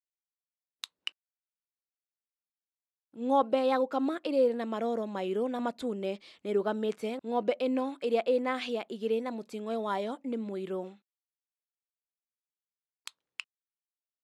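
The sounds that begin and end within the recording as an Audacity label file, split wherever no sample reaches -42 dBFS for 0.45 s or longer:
0.840000	1.080000	sound
3.160000	10.900000	sound
13.070000	13.400000	sound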